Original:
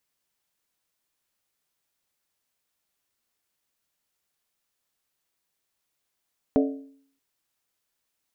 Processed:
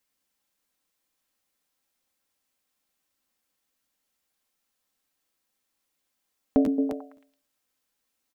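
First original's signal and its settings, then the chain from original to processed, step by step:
struck skin, lowest mode 274 Hz, decay 0.60 s, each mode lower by 4 dB, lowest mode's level −16 dB
comb filter 3.8 ms, depth 38%
echo through a band-pass that steps 111 ms, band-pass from 230 Hz, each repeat 0.7 octaves, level −1.5 dB
regular buffer underruns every 0.26 s, samples 512, repeat, from 0:00.66

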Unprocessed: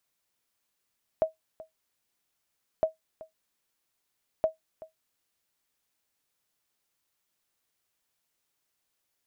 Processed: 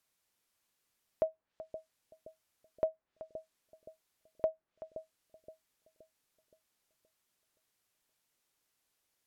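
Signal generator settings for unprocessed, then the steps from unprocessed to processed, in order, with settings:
ping with an echo 638 Hz, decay 0.14 s, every 1.61 s, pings 3, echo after 0.38 s, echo −19.5 dB −15.5 dBFS
treble cut that deepens with the level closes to 1,300 Hz, closed at −35 dBFS
brickwall limiter −20 dBFS
bucket-brigade delay 521 ms, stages 2,048, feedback 49%, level −11 dB

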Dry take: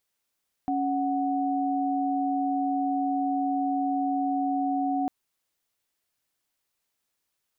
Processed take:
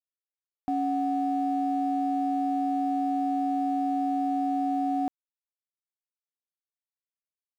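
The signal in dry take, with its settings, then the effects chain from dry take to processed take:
held notes C#4/F#5 sine, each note −26.5 dBFS 4.40 s
dead-zone distortion −51 dBFS

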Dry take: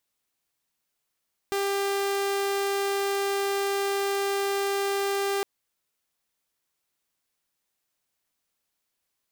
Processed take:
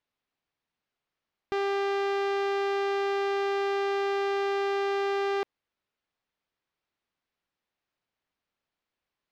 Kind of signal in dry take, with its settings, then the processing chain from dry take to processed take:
tone saw 397 Hz −22 dBFS 3.91 s
high-frequency loss of the air 220 metres

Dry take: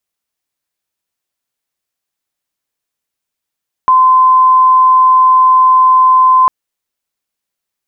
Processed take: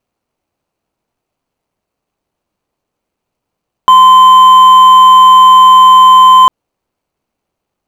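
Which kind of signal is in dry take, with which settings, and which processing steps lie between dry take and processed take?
tone sine 1,030 Hz −4 dBFS 2.60 s
running median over 25 samples
boost into a limiter +16 dB

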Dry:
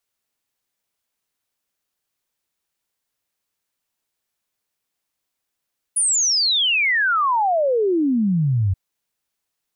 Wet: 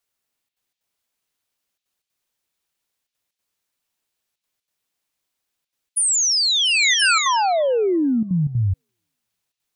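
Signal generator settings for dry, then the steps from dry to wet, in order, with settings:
exponential sine sweep 10,000 Hz → 90 Hz 2.78 s −15.5 dBFS
gate pattern "xxxxxx.xx.xxxxxx" 186 BPM −12 dB
echo through a band-pass that steps 342 ms, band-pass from 3,100 Hz, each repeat 0.7 octaves, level −2.5 dB

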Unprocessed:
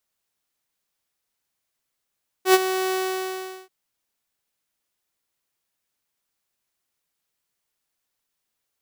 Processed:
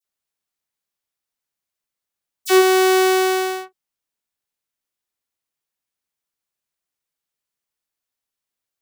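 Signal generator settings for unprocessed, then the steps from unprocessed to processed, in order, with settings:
note with an ADSR envelope saw 375 Hz, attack 90 ms, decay 36 ms, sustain −12 dB, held 0.48 s, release 755 ms −7.5 dBFS
leveller curve on the samples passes 3
all-pass dispersion lows, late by 47 ms, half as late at 2,800 Hz

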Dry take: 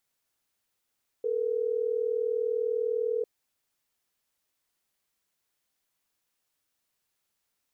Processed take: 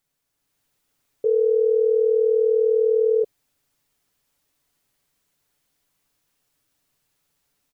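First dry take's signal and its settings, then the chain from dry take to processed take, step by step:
call progress tone ringback tone, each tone −28.5 dBFS
automatic gain control gain up to 6 dB
low-shelf EQ 320 Hz +8.5 dB
comb filter 7 ms, depth 44%

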